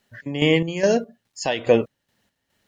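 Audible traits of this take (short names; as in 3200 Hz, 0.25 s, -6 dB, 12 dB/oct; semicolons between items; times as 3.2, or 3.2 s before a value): a quantiser's noise floor 12-bit, dither none; chopped level 2.4 Hz, depth 60%, duty 50%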